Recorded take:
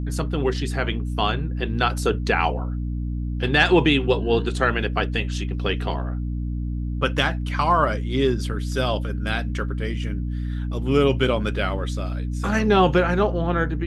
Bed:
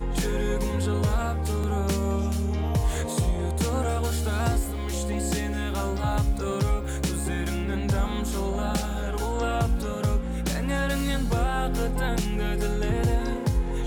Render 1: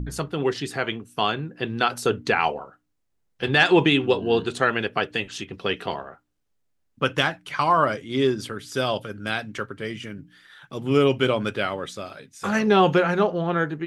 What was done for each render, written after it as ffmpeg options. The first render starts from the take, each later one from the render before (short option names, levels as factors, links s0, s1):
-af "bandreject=f=60:t=h:w=4,bandreject=f=120:t=h:w=4,bandreject=f=180:t=h:w=4,bandreject=f=240:t=h:w=4,bandreject=f=300:t=h:w=4"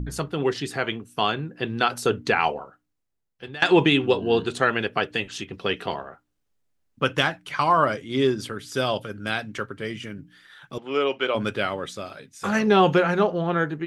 -filter_complex "[0:a]asettb=1/sr,asplit=3[s0][s1][s2];[s0]atrim=end=10.784[s3];[s1]atrim=start=10.78:end=11.35,asetpts=PTS-STARTPTS,afade=t=in:d=0.004:c=qsin,afade=t=out:st=0.566:d=0.004:c=qsin,highpass=490,lowpass=3900[s4];[s2]atrim=start=11.346[s5];[s3][s4]acrossfade=d=0.004:c1=hsin:c2=qsin[s6];[s6][s5]acrossfade=d=0.004:c1=qsin:c2=hsin,asplit=2[s7][s8];[s7]atrim=end=3.62,asetpts=PTS-STARTPTS,afade=t=out:st=2.55:d=1.07:silence=0.0891251[s9];[s8]atrim=start=3.62,asetpts=PTS-STARTPTS,afade=t=in:d=0.004:c=hsin:silence=0.0891251[s10];[s9][s10]concat=n=2:v=0:a=1"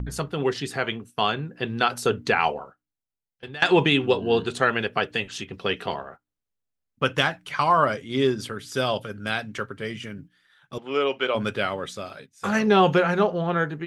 -af "agate=range=0.282:threshold=0.00708:ratio=16:detection=peak,equalizer=f=320:w=7.8:g=-6.5"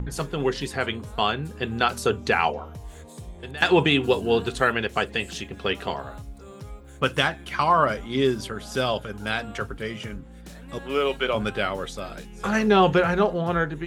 -filter_complex "[1:a]volume=0.168[s0];[0:a][s0]amix=inputs=2:normalize=0"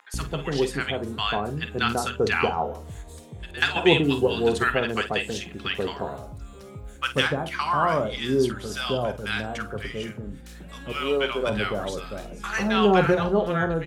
-filter_complex "[0:a]asplit=2[s0][s1];[s1]adelay=49,volume=0.266[s2];[s0][s2]amix=inputs=2:normalize=0,acrossover=split=980[s3][s4];[s3]adelay=140[s5];[s5][s4]amix=inputs=2:normalize=0"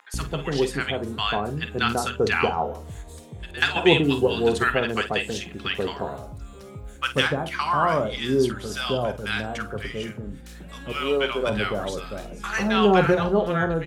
-af "volume=1.12"